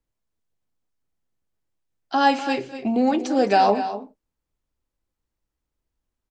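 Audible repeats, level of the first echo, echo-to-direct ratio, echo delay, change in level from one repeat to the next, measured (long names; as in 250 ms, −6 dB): 2, −19.5 dB, −11.5 dB, 210 ms, repeats not evenly spaced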